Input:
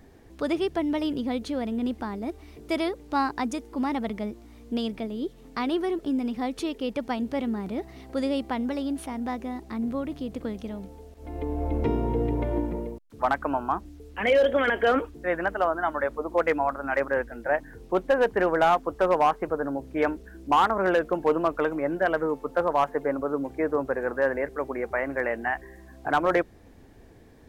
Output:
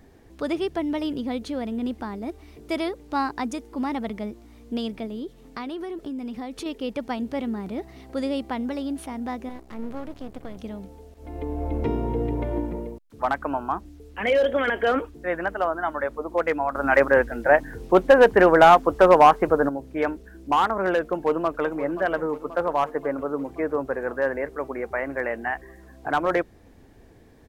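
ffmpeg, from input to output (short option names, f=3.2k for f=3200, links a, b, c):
-filter_complex "[0:a]asettb=1/sr,asplit=3[a][b][c];[a]atrim=end=5.184[d];[b]atrim=start=5.18:end=6.66,asetpts=PTS-STARTPTS,afade=t=in:d=0.004:c=qsin,afade=t=out:st=1.476:d=0.004:c=qsin,acompressor=threshold=-29dB:ratio=6:attack=3.2:release=140:knee=1:detection=peak[e];[c]atrim=start=6.656[f];[d][e]acrossfade=d=0.004:c1=hsin:c2=qsin[g];[g][f]acrossfade=d=0.004:c1=qsin:c2=hsin,asettb=1/sr,asplit=3[h][i][j];[h]atrim=end=9.494[k];[i]atrim=start=9.49:end=10.57,asetpts=PTS-STARTPTS,afade=t=in:d=0.004:c=qsin,afade=t=out:st=1.076:d=0.004:c=qsin,aeval=exprs='max(val(0),0)':c=same[l];[j]atrim=start=10.566[m];[k][l]acrossfade=d=0.004:c1=hsin:c2=qsin[n];[n][m]acrossfade=d=0.004:c1=qsin:c2=hsin,asplit=2[o][p];[p]afade=t=in:st=21.01:d=0.01,afade=t=out:st=21.64:d=0.01,aecho=0:1:530|1060|1590|2120|2650|3180|3710|4240|4770:0.211349|0.147944|0.103561|0.0724927|0.0507449|0.0355214|0.024865|0.0174055|0.0121838[q];[o][q]amix=inputs=2:normalize=0,asplit=3[r][s][t];[r]atrim=end=16.752[u];[s]atrim=start=16.748:end=19.692,asetpts=PTS-STARTPTS,volume=8dB[v];[t]atrim=start=19.688[w];[u][v]acrossfade=d=0.004:c1=hsin:c2=hsin[x];[x][w]acrossfade=d=0.004:c1=hsin:c2=hsin"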